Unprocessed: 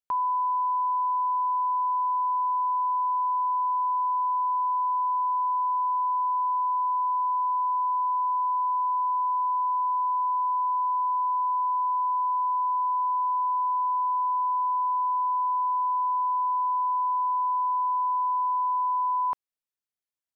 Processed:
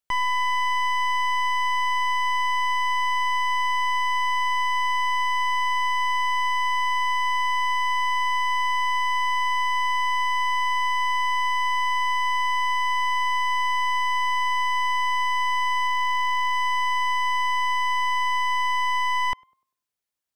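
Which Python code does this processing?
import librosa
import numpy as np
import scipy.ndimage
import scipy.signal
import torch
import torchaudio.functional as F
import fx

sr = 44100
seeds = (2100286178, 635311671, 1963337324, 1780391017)

p1 = np.minimum(x, 2.0 * 10.0 ** (-29.5 / 20.0) - x)
p2 = p1 + fx.echo_tape(p1, sr, ms=102, feedback_pct=46, wet_db=-23, lp_hz=1000.0, drive_db=24.0, wow_cents=39, dry=0)
p3 = fx.resample_linear(p2, sr, factor=2, at=(15.87, 16.54))
y = p3 * 10.0 ** (5.5 / 20.0)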